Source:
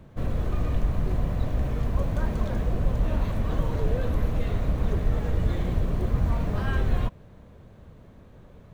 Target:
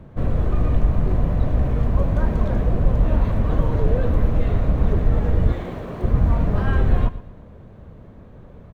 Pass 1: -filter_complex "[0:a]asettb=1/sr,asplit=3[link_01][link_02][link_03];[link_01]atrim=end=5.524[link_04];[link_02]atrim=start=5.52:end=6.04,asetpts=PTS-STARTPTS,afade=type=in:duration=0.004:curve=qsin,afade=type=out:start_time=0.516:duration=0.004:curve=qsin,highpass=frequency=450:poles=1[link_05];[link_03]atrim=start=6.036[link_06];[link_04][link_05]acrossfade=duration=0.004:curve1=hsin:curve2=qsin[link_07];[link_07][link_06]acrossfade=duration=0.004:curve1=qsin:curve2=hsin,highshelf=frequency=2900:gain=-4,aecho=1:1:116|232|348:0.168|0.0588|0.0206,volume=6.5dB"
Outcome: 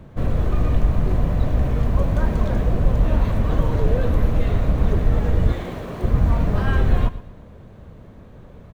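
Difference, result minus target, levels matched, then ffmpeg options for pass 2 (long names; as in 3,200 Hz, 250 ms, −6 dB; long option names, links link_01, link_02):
8,000 Hz band +7.0 dB
-filter_complex "[0:a]asettb=1/sr,asplit=3[link_01][link_02][link_03];[link_01]atrim=end=5.524[link_04];[link_02]atrim=start=5.52:end=6.04,asetpts=PTS-STARTPTS,afade=type=in:duration=0.004:curve=qsin,afade=type=out:start_time=0.516:duration=0.004:curve=qsin,highpass=frequency=450:poles=1[link_05];[link_03]atrim=start=6.036[link_06];[link_04][link_05]acrossfade=duration=0.004:curve1=hsin:curve2=qsin[link_07];[link_07][link_06]acrossfade=duration=0.004:curve1=qsin:curve2=hsin,highshelf=frequency=2900:gain=-12.5,aecho=1:1:116|232|348:0.168|0.0588|0.0206,volume=6.5dB"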